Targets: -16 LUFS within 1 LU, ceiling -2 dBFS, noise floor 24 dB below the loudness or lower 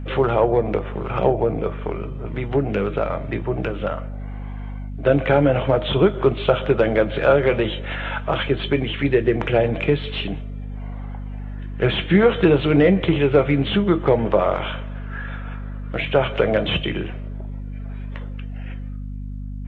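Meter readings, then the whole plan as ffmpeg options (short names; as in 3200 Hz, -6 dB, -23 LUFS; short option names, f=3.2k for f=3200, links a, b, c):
hum 50 Hz; harmonics up to 250 Hz; hum level -28 dBFS; loudness -20.5 LUFS; peak -3.0 dBFS; loudness target -16.0 LUFS
-> -af "bandreject=f=50:t=h:w=4,bandreject=f=100:t=h:w=4,bandreject=f=150:t=h:w=4,bandreject=f=200:t=h:w=4,bandreject=f=250:t=h:w=4"
-af "volume=4.5dB,alimiter=limit=-2dB:level=0:latency=1"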